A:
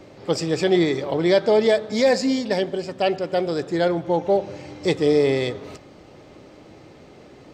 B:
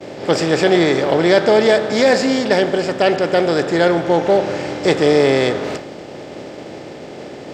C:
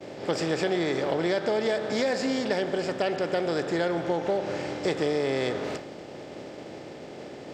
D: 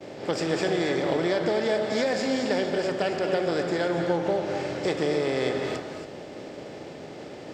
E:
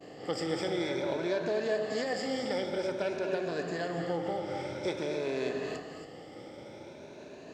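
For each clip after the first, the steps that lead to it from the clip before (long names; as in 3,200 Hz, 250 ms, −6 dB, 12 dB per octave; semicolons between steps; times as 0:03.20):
compressor on every frequency bin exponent 0.6; downward expander −26 dBFS; dynamic equaliser 1,400 Hz, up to +6 dB, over −38 dBFS, Q 1.5; level +2 dB
downward compressor, threshold −14 dBFS, peak gain reduction 6.5 dB; level −8.5 dB
reverb whose tail is shaped and stops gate 300 ms rising, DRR 5 dB
rippled gain that drifts along the octave scale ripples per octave 1.5, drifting +0.51 Hz, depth 11 dB; level −8.5 dB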